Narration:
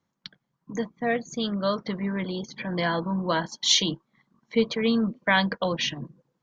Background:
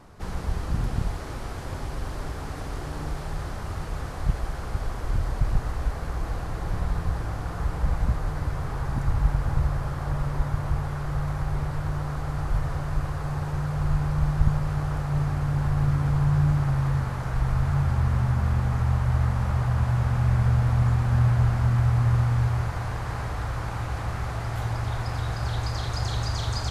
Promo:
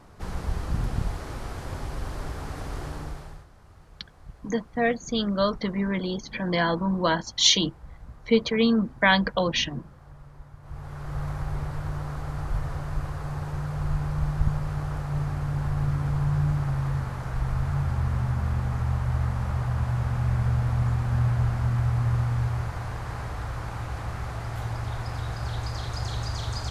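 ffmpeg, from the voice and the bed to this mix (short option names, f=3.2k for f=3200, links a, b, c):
-filter_complex "[0:a]adelay=3750,volume=2dB[a];[1:a]volume=16dB,afade=t=out:st=2.85:d=0.61:silence=0.112202,afade=t=in:st=10.61:d=0.63:silence=0.141254[b];[a][b]amix=inputs=2:normalize=0"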